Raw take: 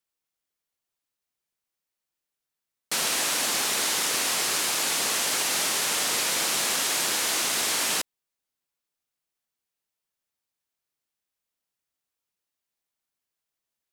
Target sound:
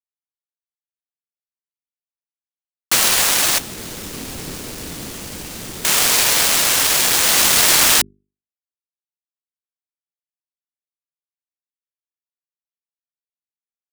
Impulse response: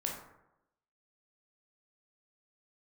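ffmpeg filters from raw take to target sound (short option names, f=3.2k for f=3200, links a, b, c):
-filter_complex "[0:a]equalizer=f=480:w=0.53:g=-2.5,acrusher=bits=3:mix=0:aa=0.000001,dynaudnorm=f=130:g=9:m=13dB,bandreject=f=50:t=h:w=6,bandreject=f=100:t=h:w=6,bandreject=f=150:t=h:w=6,bandreject=f=200:t=h:w=6,bandreject=f=250:t=h:w=6,bandreject=f=300:t=h:w=6,bandreject=f=350:t=h:w=6,bandreject=f=400:t=h:w=6,asettb=1/sr,asplit=3[a][b][c];[a]atrim=end=3.584[d];[b]atrim=start=3.58:end=5.85,asetpts=PTS-STARTPTS,afade=t=in:d=0.004:c=qsin,afade=t=out:st=2.266:d=0.004:c=qsin,acrossover=split=380[e][f];[f]acompressor=threshold=-31dB:ratio=6[g];[e][g]amix=inputs=2:normalize=0[h];[c]atrim=start=5.846[i];[d][h]acrossfade=d=0.004:c1=hsin:c2=qsin[j];[j][i]acrossfade=d=0.004:c1=qsin:c2=hsin"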